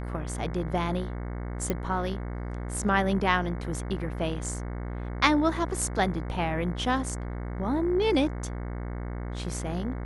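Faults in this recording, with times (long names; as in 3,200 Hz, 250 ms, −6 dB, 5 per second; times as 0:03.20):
mains buzz 60 Hz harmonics 37 −34 dBFS
0:01.70: click −14 dBFS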